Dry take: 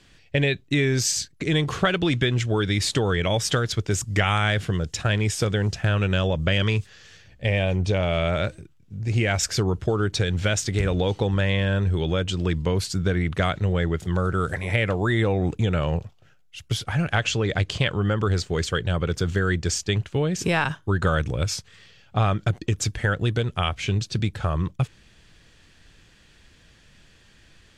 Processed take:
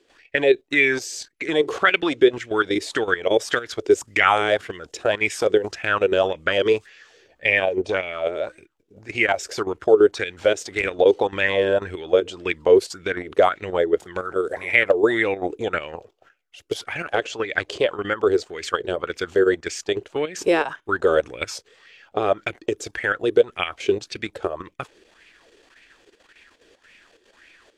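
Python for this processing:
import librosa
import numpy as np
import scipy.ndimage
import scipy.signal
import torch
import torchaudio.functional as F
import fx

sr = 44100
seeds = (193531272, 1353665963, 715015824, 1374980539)

y = fx.level_steps(x, sr, step_db=11)
y = fx.low_shelf_res(y, sr, hz=220.0, db=-13.5, q=1.5)
y = fx.bell_lfo(y, sr, hz=1.8, low_hz=380.0, high_hz=2400.0, db=15)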